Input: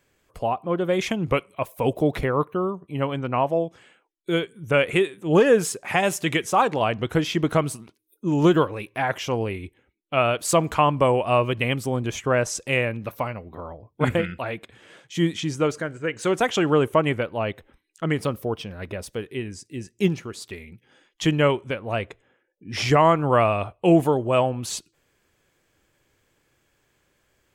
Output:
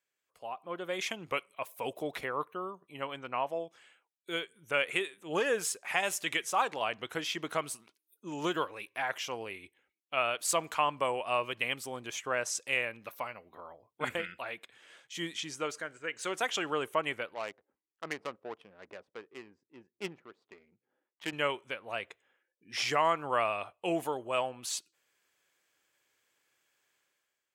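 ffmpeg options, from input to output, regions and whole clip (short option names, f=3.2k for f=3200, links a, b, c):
-filter_complex "[0:a]asettb=1/sr,asplit=3[a][b][c];[a]atrim=end=17.344[d];[b]atrim=start=17.34:end=21.33,asetpts=PTS-STARTPTS,afade=t=in:d=0.004:c=qsin,afade=t=out:st=3.986:d=0.004:c=qsin,highpass=f=220:p=1,adynamicsmooth=sensitivity=2:basefreq=560[e];[c]atrim=start=21.326[f];[d][e]acrossfade=d=0.004:c1=hsin:c2=qsin[g];[g][f]acrossfade=d=0.004:c1=qsin:c2=hsin,lowpass=f=1.3k:p=1,aderivative,dynaudnorm=f=120:g=9:m=12dB,volume=-2dB"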